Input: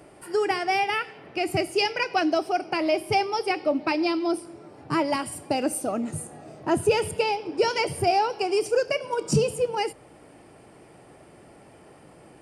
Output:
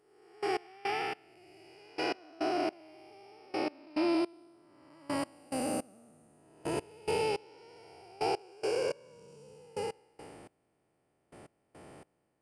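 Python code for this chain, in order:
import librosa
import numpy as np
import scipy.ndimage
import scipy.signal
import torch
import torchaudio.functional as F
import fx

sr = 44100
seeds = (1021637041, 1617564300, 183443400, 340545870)

y = fx.spec_blur(x, sr, span_ms=504.0)
y = fx.step_gate(y, sr, bpm=106, pattern='...x..xx...', floor_db=-24.0, edge_ms=4.5)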